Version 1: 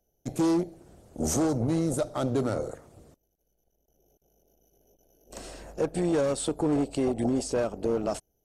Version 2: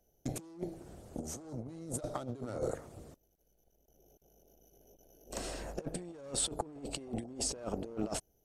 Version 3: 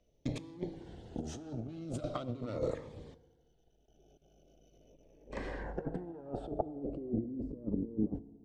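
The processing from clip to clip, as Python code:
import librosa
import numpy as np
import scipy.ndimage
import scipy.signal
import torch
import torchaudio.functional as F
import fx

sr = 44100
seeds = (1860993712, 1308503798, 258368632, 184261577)

y1 = fx.over_compress(x, sr, threshold_db=-33.0, ratio=-0.5)
y1 = y1 * librosa.db_to_amplitude(-5.0)
y2 = fx.filter_sweep_lowpass(y1, sr, from_hz=3400.0, to_hz=280.0, start_s=4.79, end_s=7.44, q=2.0)
y2 = fx.rev_fdn(y2, sr, rt60_s=1.5, lf_ratio=1.05, hf_ratio=0.7, size_ms=20.0, drr_db=16.5)
y2 = fx.notch_cascade(y2, sr, direction='falling', hz=0.41)
y2 = y2 * librosa.db_to_amplitude(2.0)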